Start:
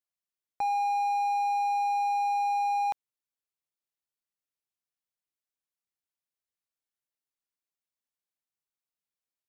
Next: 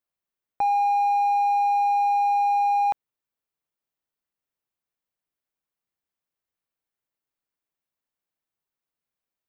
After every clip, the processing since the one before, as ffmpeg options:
-af "equalizer=f=7600:t=o:w=2.7:g=-9.5,volume=2.24"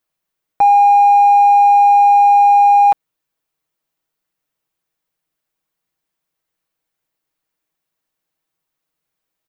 -af "aecho=1:1:6.3:0.51,volume=2.82"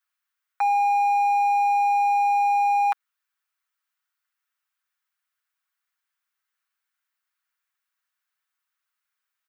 -af "highpass=f=1400:t=q:w=2.4,volume=0.562"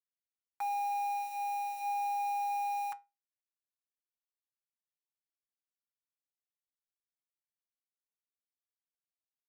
-af "alimiter=limit=0.0708:level=0:latency=1,acrusher=bits=6:mix=0:aa=0.000001,flanger=delay=8:depth=1.3:regen=-78:speed=0.33:shape=sinusoidal,volume=0.75"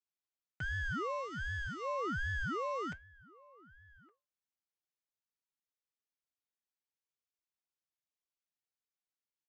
-filter_complex "[0:a]aresample=16000,aresample=44100,asplit=2[s0][s1];[s1]adelay=1166,volume=0.0794,highshelf=f=4000:g=-26.2[s2];[s0][s2]amix=inputs=2:normalize=0,aeval=exprs='val(0)*sin(2*PI*570*n/s+570*0.6/1.3*sin(2*PI*1.3*n/s))':c=same"

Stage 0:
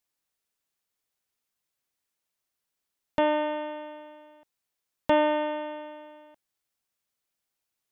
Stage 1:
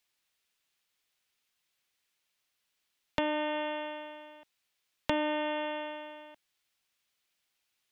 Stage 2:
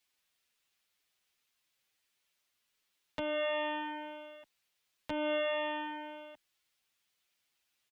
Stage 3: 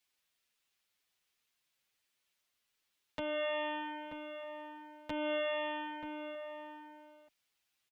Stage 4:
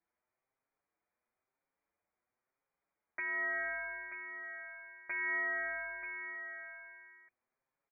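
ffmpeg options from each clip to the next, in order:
-filter_complex "[0:a]equalizer=f=2900:w=0.64:g=9.5,acrossover=split=260[s0][s1];[s1]acompressor=threshold=0.0316:ratio=6[s2];[s0][s2]amix=inputs=2:normalize=0"
-filter_complex "[0:a]alimiter=limit=0.0841:level=0:latency=1:release=255,asplit=2[s0][s1];[s1]adelay=7.4,afreqshift=-0.99[s2];[s0][s2]amix=inputs=2:normalize=1,volume=1.41"
-filter_complex "[0:a]asplit=2[s0][s1];[s1]adelay=932.9,volume=0.398,highshelf=f=4000:g=-21[s2];[s0][s2]amix=inputs=2:normalize=0,volume=0.794"
-af "lowpass=f=2100:t=q:w=0.5098,lowpass=f=2100:t=q:w=0.6013,lowpass=f=2100:t=q:w=0.9,lowpass=f=2100:t=q:w=2.563,afreqshift=-2500"

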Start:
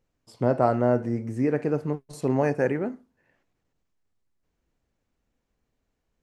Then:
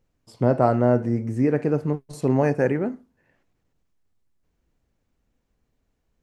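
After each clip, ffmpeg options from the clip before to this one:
-af "lowshelf=f=260:g=4.5,volume=1.19"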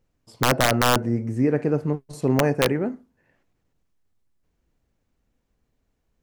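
-af "aeval=exprs='(mod(2.99*val(0)+1,2)-1)/2.99':c=same"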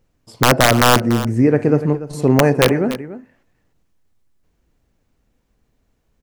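-af "aecho=1:1:290:0.2,volume=2.24"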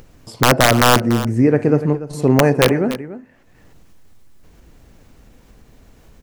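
-af "acompressor=mode=upward:threshold=0.0316:ratio=2.5"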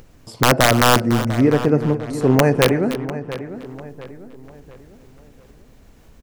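-filter_complex "[0:a]asplit=2[s0][s1];[s1]adelay=697,lowpass=f=3000:p=1,volume=0.224,asplit=2[s2][s3];[s3]adelay=697,lowpass=f=3000:p=1,volume=0.41,asplit=2[s4][s5];[s5]adelay=697,lowpass=f=3000:p=1,volume=0.41,asplit=2[s6][s7];[s7]adelay=697,lowpass=f=3000:p=1,volume=0.41[s8];[s0][s2][s4][s6][s8]amix=inputs=5:normalize=0,volume=0.841"

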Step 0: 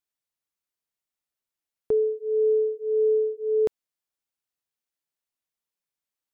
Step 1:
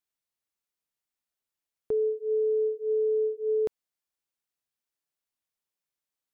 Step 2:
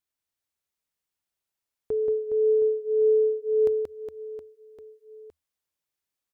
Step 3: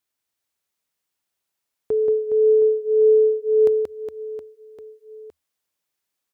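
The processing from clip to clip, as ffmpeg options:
-af "alimiter=limit=0.0891:level=0:latency=1,volume=0.891"
-af "equalizer=f=79:t=o:w=0.32:g=9.5,aecho=1:1:180|414|718.2|1114|1628:0.631|0.398|0.251|0.158|0.1"
-af "highpass=f=120:p=1,volume=2"

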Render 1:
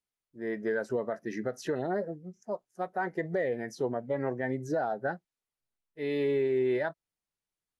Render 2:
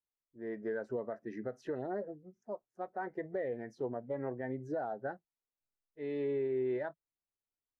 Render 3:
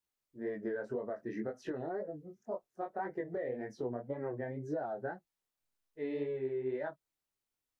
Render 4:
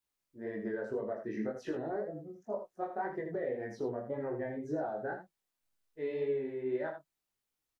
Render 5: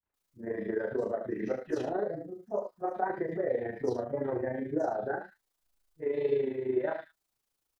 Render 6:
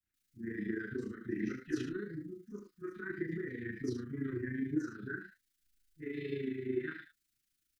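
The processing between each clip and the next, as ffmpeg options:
-af "lowpass=f=1200:p=1,equalizer=f=170:w=7.2:g=-12.5,volume=0.531"
-af "acompressor=threshold=0.0112:ratio=6,flanger=delay=19.5:depth=5.7:speed=1.9,volume=2.51"
-af "aecho=1:1:19|79:0.596|0.447"
-filter_complex "[0:a]tremolo=f=27:d=0.621,acrossover=split=190|2200[s0][s1][s2];[s1]adelay=30[s3];[s2]adelay=140[s4];[s0][s3][s4]amix=inputs=3:normalize=0,volume=2.51"
-af "asuperstop=centerf=700:order=8:qfactor=0.64,volume=1.12"

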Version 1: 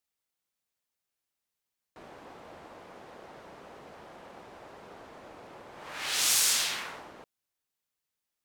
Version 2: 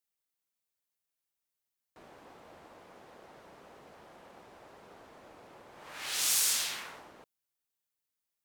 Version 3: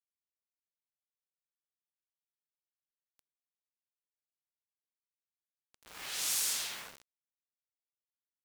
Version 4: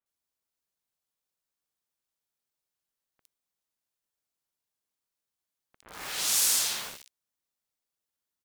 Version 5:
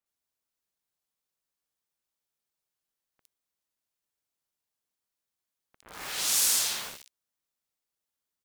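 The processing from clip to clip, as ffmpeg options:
-af "highshelf=f=8900:g=6.5,volume=0.531"
-af "acrusher=bits=6:mix=0:aa=0.000001,volume=0.596"
-filter_complex "[0:a]acrossover=split=2300[s0][s1];[s1]adelay=60[s2];[s0][s2]amix=inputs=2:normalize=0,volume=2.51"
-af "acrusher=bits=6:mode=log:mix=0:aa=0.000001"

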